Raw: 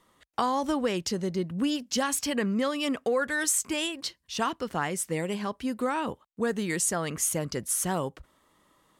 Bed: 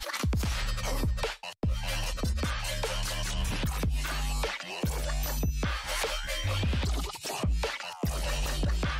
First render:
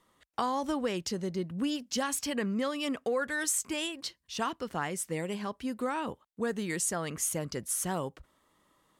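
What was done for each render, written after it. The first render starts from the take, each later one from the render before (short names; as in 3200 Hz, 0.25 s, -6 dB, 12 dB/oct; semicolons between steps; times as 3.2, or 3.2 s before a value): gain -4 dB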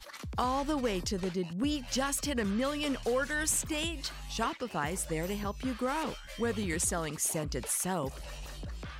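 add bed -12.5 dB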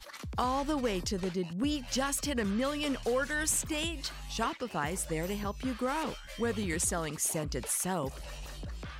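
nothing audible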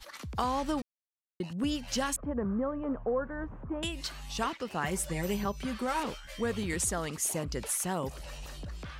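0.82–1.4 mute; 2.16–3.83 LPF 1200 Hz 24 dB/oct; 4.83–6 comb 5.2 ms, depth 63%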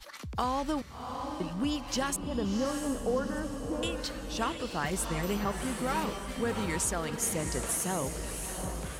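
diffused feedback echo 0.711 s, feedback 45%, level -6 dB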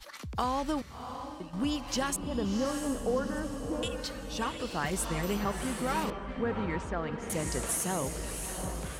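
0.93–1.53 fade out, to -10.5 dB; 3.83–4.54 notch comb 340 Hz; 6.1–7.3 LPF 2100 Hz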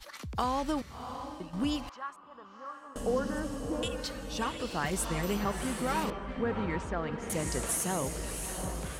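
1.89–2.96 band-pass 1200 Hz, Q 4.2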